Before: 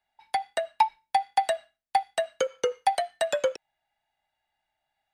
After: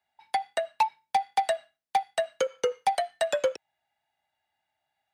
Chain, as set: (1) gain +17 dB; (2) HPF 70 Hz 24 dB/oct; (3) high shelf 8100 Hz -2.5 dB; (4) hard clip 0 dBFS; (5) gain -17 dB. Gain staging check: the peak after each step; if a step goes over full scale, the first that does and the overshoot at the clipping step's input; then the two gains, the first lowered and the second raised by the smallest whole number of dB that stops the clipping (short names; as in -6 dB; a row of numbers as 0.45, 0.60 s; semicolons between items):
+7.5, +7.5, +7.5, 0.0, -17.0 dBFS; step 1, 7.5 dB; step 1 +9 dB, step 5 -9 dB